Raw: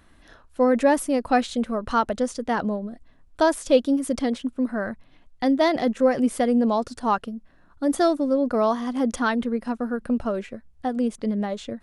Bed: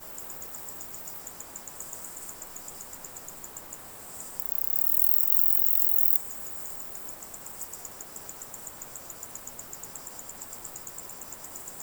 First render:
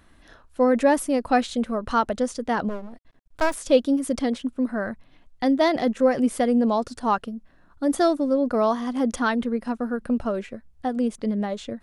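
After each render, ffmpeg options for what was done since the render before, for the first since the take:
-filter_complex "[0:a]asplit=3[s0][s1][s2];[s0]afade=t=out:st=2.68:d=0.02[s3];[s1]aeval=exprs='max(val(0),0)':c=same,afade=t=in:st=2.68:d=0.02,afade=t=out:st=3.53:d=0.02[s4];[s2]afade=t=in:st=3.53:d=0.02[s5];[s3][s4][s5]amix=inputs=3:normalize=0"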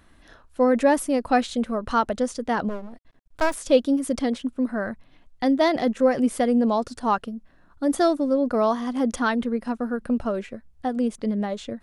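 -af anull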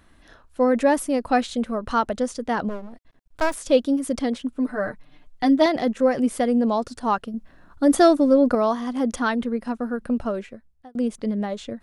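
-filter_complex "[0:a]asettb=1/sr,asplit=3[s0][s1][s2];[s0]atrim=end=4.544[s3];[s1]atrim=start=4.54:end=5.66,asetpts=PTS-STARTPTS,afade=t=in:d=0.004:c=qsin,afade=t=out:st=1.116:d=0.004:c=qsin,aecho=1:1:6.7:0.76,atrim=end_sample=49392[s4];[s2]atrim=start=5.656[s5];[s3][s4]acrossfade=d=0.004:c1=hsin:c2=qsin[s6];[s6][s5]acrossfade=d=0.004:c1=qsin:c2=hsin,asettb=1/sr,asplit=3[s7][s8][s9];[s7]atrim=end=7.344[s10];[s8]atrim=start=7.34:end=8.55,asetpts=PTS-STARTPTS,afade=t=in:d=0.004:c=qsin,afade=t=out:st=1.206:d=0.004:c=qsin,acontrast=44[s11];[s9]atrim=start=8.546[s12];[s10][s11]acrossfade=d=0.004:c1=hsin:c2=qsin[s13];[s13][s12]acrossfade=d=0.004:c1=qsin:c2=hsin,asplit=2[s14][s15];[s14]atrim=end=10.95,asetpts=PTS-STARTPTS,afade=t=out:st=10.31:d=0.64[s16];[s15]atrim=start=10.95,asetpts=PTS-STARTPTS,afade=t=in:d=0.004:c=hsin[s17];[s16][s17]concat=n=2:v=0:a=1"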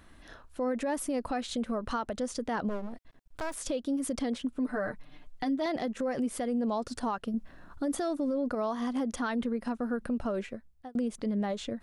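-af "acompressor=threshold=0.0501:ratio=2,alimiter=limit=0.0668:level=0:latency=1:release=131"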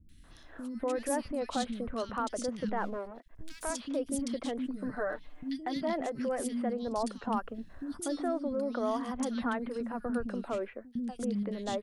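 -filter_complex "[0:a]acrossover=split=270|2400[s0][s1][s2];[s2]adelay=90[s3];[s1]adelay=240[s4];[s0][s4][s3]amix=inputs=3:normalize=0"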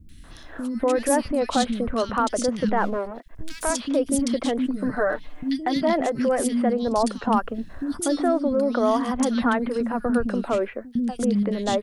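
-af "volume=3.55"

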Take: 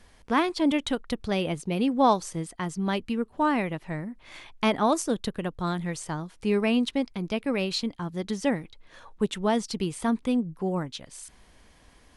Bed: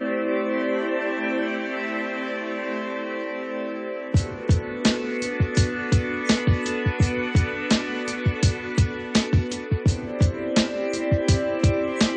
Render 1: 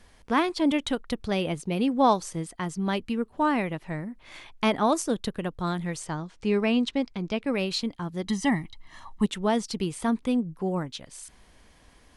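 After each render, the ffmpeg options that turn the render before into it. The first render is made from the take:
-filter_complex "[0:a]asettb=1/sr,asplit=3[s0][s1][s2];[s0]atrim=end=6.064[s3];[s1]atrim=start=6.06:end=7.47,asetpts=PTS-STARTPTS,afade=t=in:d=0.004:c=qsin,afade=t=out:st=1.406:d=0.004:c=qsin,lowpass=f=7900:w=0.5412,lowpass=f=7900:w=1.3066[s4];[s2]atrim=start=7.466[s5];[s3][s4]acrossfade=d=0.004:c1=hsin:c2=qsin[s6];[s6][s5]acrossfade=d=0.004:c1=qsin:c2=hsin,asettb=1/sr,asplit=3[s7][s8][s9];[s7]atrim=end=8.264[s10];[s8]atrim=start=8.26:end=9.26,asetpts=PTS-STARTPTS,afade=t=in:d=0.004:c=qsin,afade=t=out:st=0.996:d=0.004:c=qsin,aecho=1:1:1:0.97,atrim=end_sample=44100[s11];[s9]atrim=start=9.256[s12];[s10][s11]acrossfade=d=0.004:c1=hsin:c2=qsin[s13];[s13][s12]acrossfade=d=0.004:c1=qsin:c2=hsin"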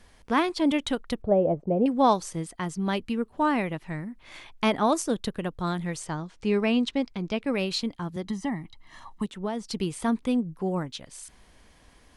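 -filter_complex "[0:a]asettb=1/sr,asplit=3[s0][s1][s2];[s0]atrim=end=1.224[s3];[s1]atrim=start=1.22:end=1.86,asetpts=PTS-STARTPTS,afade=t=in:d=0.004:c=qsin,afade=t=out:st=0.636:d=0.004:c=qsin,lowpass=f=620:t=q:w=3.5[s4];[s2]atrim=start=1.856[s5];[s3][s4]acrossfade=d=0.004:c1=hsin:c2=qsin[s6];[s6][s5]acrossfade=d=0.004:c1=qsin:c2=hsin,asettb=1/sr,asplit=3[s7][s8][s9];[s7]atrim=end=3.774[s10];[s8]atrim=start=3.77:end=4.23,asetpts=PTS-STARTPTS,afade=t=in:d=0.004:c=qsin,afade=t=out:st=0.456:d=0.004:c=qsin,equalizer=f=560:w=1.5:g=-5.5[s11];[s9]atrim=start=4.226[s12];[s10][s11]acrossfade=d=0.004:c1=hsin:c2=qsin[s13];[s13][s12]acrossfade=d=0.004:c1=qsin:c2=hsin,asettb=1/sr,asplit=3[s14][s15][s16];[s14]atrim=end=8.164[s17];[s15]atrim=start=8.16:end=9.69,asetpts=PTS-STARTPTS,afade=t=in:d=0.004:c=qsin,afade=t=out:st=1.526:d=0.004:c=qsin,acrossover=split=130|1600[s18][s19][s20];[s18]acompressor=threshold=0.00447:ratio=4[s21];[s19]acompressor=threshold=0.0398:ratio=4[s22];[s20]acompressor=threshold=0.00398:ratio=4[s23];[s21][s22][s23]amix=inputs=3:normalize=0[s24];[s16]atrim=start=9.686[s25];[s17][s24]acrossfade=d=0.004:c1=hsin:c2=qsin[s26];[s26][s25]acrossfade=d=0.004:c1=qsin:c2=hsin"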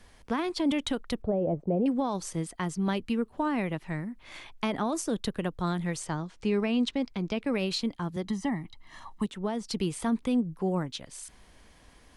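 -filter_complex "[0:a]alimiter=limit=0.119:level=0:latency=1:release=17,acrossover=split=320[s0][s1];[s1]acompressor=threshold=0.0398:ratio=6[s2];[s0][s2]amix=inputs=2:normalize=0"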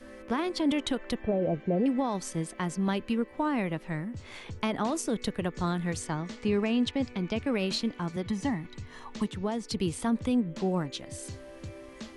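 -filter_complex "[1:a]volume=0.075[s0];[0:a][s0]amix=inputs=2:normalize=0"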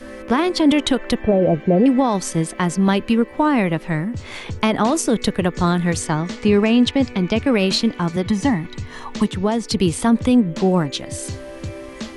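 -af "volume=3.98"

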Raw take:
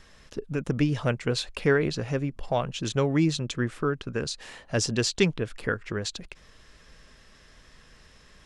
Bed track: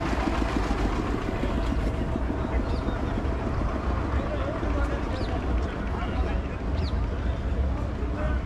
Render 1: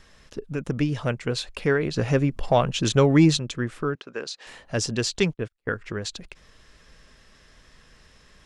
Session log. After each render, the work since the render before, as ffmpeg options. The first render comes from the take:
-filter_complex "[0:a]asplit=3[s0][s1][s2];[s0]afade=t=out:st=1.96:d=0.02[s3];[s1]acontrast=84,afade=t=in:st=1.96:d=0.02,afade=t=out:st=3.37:d=0.02[s4];[s2]afade=t=in:st=3.37:d=0.02[s5];[s3][s4][s5]amix=inputs=3:normalize=0,asettb=1/sr,asplit=3[s6][s7][s8];[s6]atrim=end=3.954[s9];[s7]atrim=start=3.95:end=4.47,asetpts=PTS-STARTPTS,afade=t=in:d=0.004:c=qsin,afade=t=out:st=0.516:d=0.004:c=qsin,highpass=380,lowpass=6200[s10];[s8]atrim=start=4.466[s11];[s9][s10]acrossfade=d=0.004:c1=hsin:c2=qsin[s12];[s12][s11]acrossfade=d=0.004:c1=qsin:c2=hsin,asettb=1/sr,asplit=3[s13][s14][s15];[s13]atrim=end=5.204[s16];[s14]atrim=start=5.2:end=5.75,asetpts=PTS-STARTPTS,afade=t=in:d=0.004:c=qsin,afade=t=out:st=0.546:d=0.004:c=qsin,agate=range=0.00794:threshold=0.02:ratio=16:release=100:detection=peak[s17];[s15]atrim=start=5.746[s18];[s16][s17]acrossfade=d=0.004:c1=hsin:c2=qsin[s19];[s19][s18]acrossfade=d=0.004:c1=qsin:c2=hsin"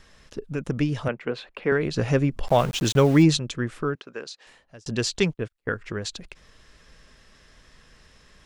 -filter_complex "[0:a]asettb=1/sr,asplit=3[s0][s1][s2];[s0]atrim=end=1.084[s3];[s1]atrim=start=1.08:end=1.72,asetpts=PTS-STARTPTS,afade=t=in:d=0.004:c=qsin,afade=t=out:st=0.636:d=0.004:c=qsin,acrossover=split=180 3100:gain=0.126 1 0.0708[s4][s5][s6];[s4][s5][s6]amix=inputs=3:normalize=0[s7];[s2]atrim=start=1.716[s8];[s3][s7]acrossfade=d=0.004:c1=hsin:c2=qsin[s9];[s9][s8]acrossfade=d=0.004:c1=qsin:c2=hsin,asplit=3[s10][s11][s12];[s10]afade=t=out:st=2.47:d=0.02[s13];[s11]aeval=exprs='val(0)*gte(abs(val(0)),0.0237)':c=same,afade=t=in:st=2.47:d=0.02,afade=t=out:st=3.22:d=0.02[s14];[s12]afade=t=in:st=3.22:d=0.02[s15];[s13][s14][s15]amix=inputs=3:normalize=0,asplit=2[s16][s17];[s16]atrim=end=4.86,asetpts=PTS-STARTPTS,afade=t=out:st=3.91:d=0.95[s18];[s17]atrim=start=4.86,asetpts=PTS-STARTPTS,afade=t=in:d=0.004:c=hsin[s19];[s18][s19]concat=n=2:v=0:a=1"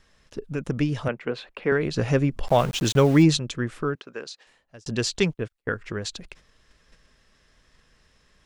-af "agate=range=0.447:threshold=0.00355:ratio=16:detection=peak"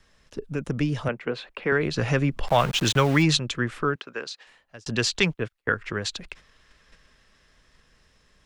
-filter_complex "[0:a]acrossover=split=150|840|4100[s0][s1][s2][s3];[s1]alimiter=limit=0.119:level=0:latency=1[s4];[s2]dynaudnorm=f=410:g=9:m=2[s5];[s0][s4][s5][s3]amix=inputs=4:normalize=0"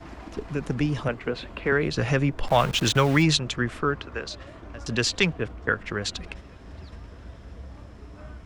-filter_complex "[1:a]volume=0.178[s0];[0:a][s0]amix=inputs=2:normalize=0"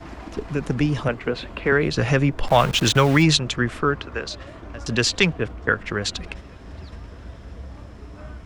-af "volume=1.58,alimiter=limit=0.708:level=0:latency=1"

